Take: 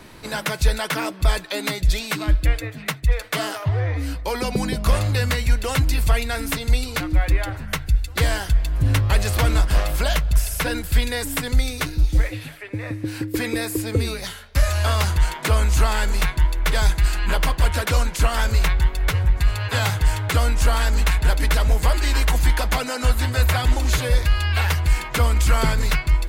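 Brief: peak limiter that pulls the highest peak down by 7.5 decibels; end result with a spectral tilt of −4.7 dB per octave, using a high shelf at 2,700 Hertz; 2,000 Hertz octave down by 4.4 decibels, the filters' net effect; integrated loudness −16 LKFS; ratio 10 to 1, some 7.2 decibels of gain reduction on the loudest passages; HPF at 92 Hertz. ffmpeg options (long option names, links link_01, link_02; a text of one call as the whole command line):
ffmpeg -i in.wav -af "highpass=92,equalizer=frequency=2000:width_type=o:gain=-4,highshelf=frequency=2700:gain=-4,acompressor=threshold=-24dB:ratio=10,volume=15dB,alimiter=limit=-5dB:level=0:latency=1" out.wav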